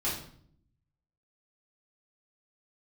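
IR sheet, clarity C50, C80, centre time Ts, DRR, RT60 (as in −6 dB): 4.0 dB, 8.0 dB, 41 ms, −9.0 dB, 0.60 s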